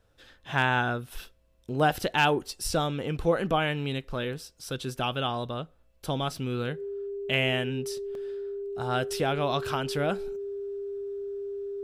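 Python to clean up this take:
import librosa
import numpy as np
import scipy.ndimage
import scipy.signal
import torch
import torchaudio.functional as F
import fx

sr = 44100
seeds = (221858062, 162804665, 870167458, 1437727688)

y = fx.fix_declip(x, sr, threshold_db=-12.0)
y = fx.notch(y, sr, hz=400.0, q=30.0)
y = fx.fix_interpolate(y, sr, at_s=(2.64, 4.38, 6.37, 8.15), length_ms=1.9)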